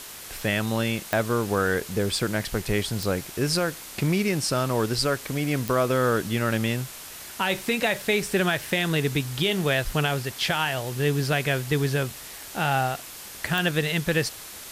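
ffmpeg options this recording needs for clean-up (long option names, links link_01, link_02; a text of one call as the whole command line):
ffmpeg -i in.wav -af "adeclick=threshold=4,afwtdn=0.011" out.wav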